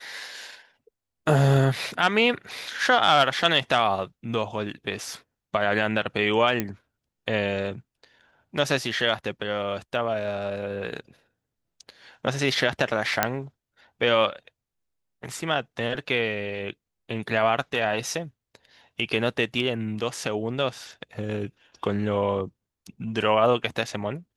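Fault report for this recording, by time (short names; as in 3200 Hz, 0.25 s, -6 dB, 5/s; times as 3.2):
6.6 pop -10 dBFS
13.23 pop -3 dBFS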